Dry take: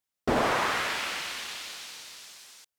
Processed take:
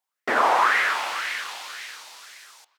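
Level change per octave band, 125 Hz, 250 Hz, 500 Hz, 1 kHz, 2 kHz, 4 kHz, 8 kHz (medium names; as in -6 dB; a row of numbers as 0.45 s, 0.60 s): under -15 dB, -5.5 dB, +1.5 dB, +8.5 dB, +8.0 dB, +1.5 dB, 0.0 dB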